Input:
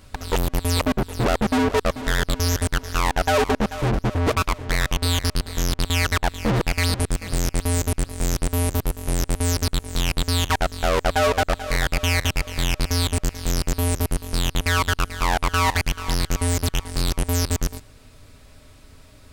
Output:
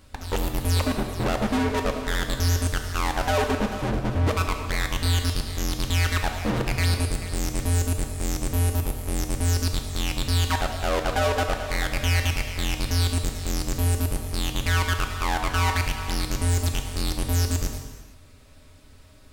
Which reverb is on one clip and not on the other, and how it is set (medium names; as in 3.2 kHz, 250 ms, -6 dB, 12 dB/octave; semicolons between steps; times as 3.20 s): gated-style reverb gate 490 ms falling, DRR 4 dB; trim -5 dB